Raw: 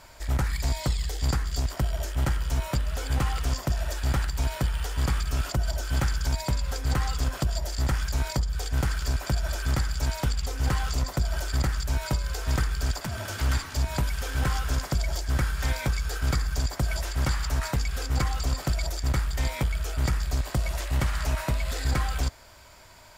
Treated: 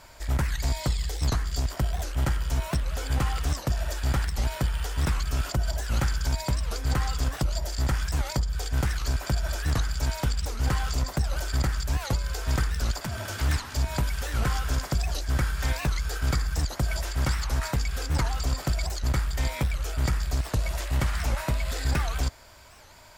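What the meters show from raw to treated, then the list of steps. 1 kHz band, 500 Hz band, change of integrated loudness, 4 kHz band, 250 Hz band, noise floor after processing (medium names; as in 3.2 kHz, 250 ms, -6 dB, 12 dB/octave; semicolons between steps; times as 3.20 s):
0.0 dB, 0.0 dB, 0.0 dB, 0.0 dB, 0.0 dB, -42 dBFS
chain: warped record 78 rpm, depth 250 cents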